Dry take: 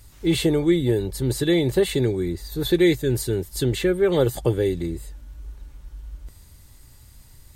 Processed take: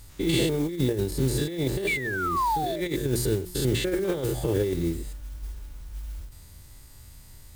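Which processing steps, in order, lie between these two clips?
spectrum averaged block by block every 100 ms
mains-hum notches 60/120/180/240/300/360 Hz
sound drawn into the spectrogram fall, 0:01.87–0:02.81, 570–2,400 Hz −23 dBFS
noise that follows the level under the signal 21 dB
compressor whose output falls as the input rises −24 dBFS, ratio −0.5
every ending faded ahead of time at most 120 dB per second

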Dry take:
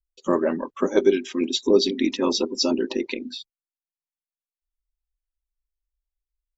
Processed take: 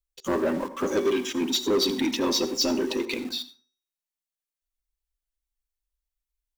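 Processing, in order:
high-shelf EQ 2,700 Hz +6 dB
notch filter 5,000 Hz, Q 25
hum removal 376.9 Hz, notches 27
in parallel at −11 dB: log-companded quantiser 2 bits
on the sum: soft clipping −15.5 dBFS, distortion −5 dB
on a send at −13 dB: convolution reverb RT60 0.40 s, pre-delay 67 ms
on the sum: level −2.5 dB

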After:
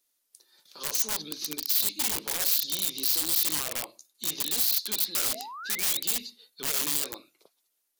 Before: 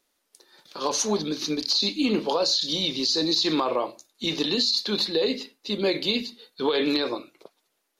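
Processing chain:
sound drawn into the spectrogram rise, 0:05.14–0:06.00, 350–4,000 Hz −28 dBFS
wrap-around overflow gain 19 dB
first-order pre-emphasis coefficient 0.8

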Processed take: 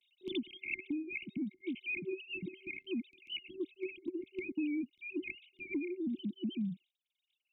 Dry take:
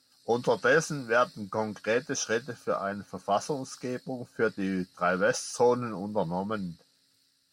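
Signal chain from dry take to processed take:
three sine waves on the formant tracks
noise gate with hold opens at −45 dBFS
brick-wall band-stop 380–2,100 Hz
multiband upward and downward compressor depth 100%
level +5 dB

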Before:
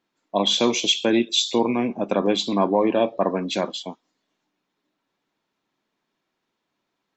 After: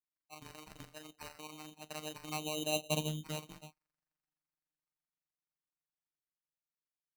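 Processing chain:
source passing by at 0:02.88, 33 m/s, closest 6.3 metres
treble cut that deepens with the level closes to 570 Hz, closed at −24.5 dBFS
phases set to zero 153 Hz
decimation without filtering 13×
parametric band 410 Hz −12.5 dB 1.7 octaves

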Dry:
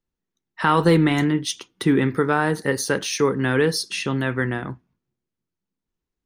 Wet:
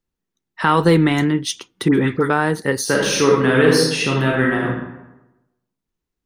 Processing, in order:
0:01.88–0:02.30: all-pass dispersion highs, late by 64 ms, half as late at 1,600 Hz
0:02.83–0:04.68: thrown reverb, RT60 1 s, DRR −2.5 dB
level +2.5 dB

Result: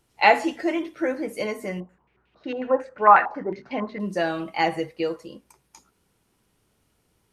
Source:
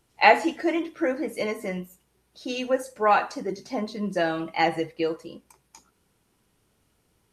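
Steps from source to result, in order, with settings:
0:01.80–0:04.00: low-pass on a step sequencer 11 Hz 840–2,800 Hz

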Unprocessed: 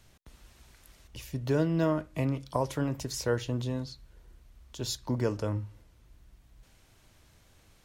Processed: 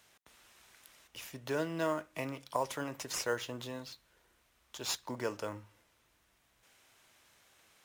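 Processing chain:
high-pass filter 1,200 Hz 6 dB per octave
notch filter 4,400 Hz, Q 20
in parallel at −7.5 dB: sample-rate reduction 7,900 Hz

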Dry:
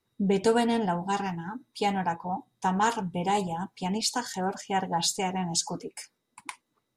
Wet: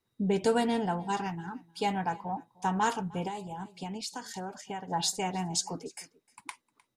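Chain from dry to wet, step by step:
single-tap delay 306 ms −23.5 dB
0:03.27–0:04.88: downward compressor 6 to 1, threshold −32 dBFS, peak gain reduction 10.5 dB
level −3 dB

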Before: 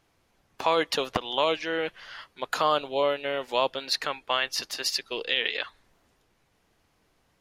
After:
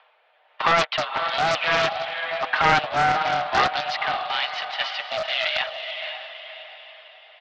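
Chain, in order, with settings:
comb filter 6.8 ms, depth 70%
in parallel at +0.5 dB: brickwall limiter −15 dBFS, peak gain reduction 7.5 dB
on the sum: leveller curve on the samples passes 2
upward compression, threshold −35 dBFS
rotating-speaker cabinet horn 1 Hz
background noise brown −46 dBFS
on a send: feedback delay with all-pass diffusion 521 ms, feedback 44%, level −7 dB
on the sum: single-sideband voice off tune +180 Hz 440–3,300 Hz
highs frequency-modulated by the lows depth 0.33 ms
level −4 dB

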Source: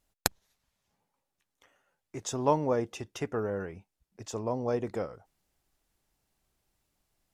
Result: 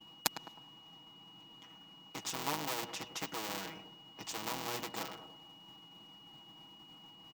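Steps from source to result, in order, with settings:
sub-harmonics by changed cycles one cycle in 3, muted
background noise brown −55 dBFS
low shelf with overshoot 700 Hz −6.5 dB, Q 3
comb filter 6.2 ms, depth 87%
tape delay 103 ms, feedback 49%, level −15.5 dB, low-pass 1,200 Hz
steady tone 2,900 Hz −49 dBFS
graphic EQ with 15 bands 250 Hz +10 dB, 1,600 Hz −9 dB, 10,000 Hz −12 dB
downward expander −48 dBFS
high-pass filter 170 Hz 12 dB per octave
every bin compressed towards the loudest bin 2 to 1
level −3.5 dB

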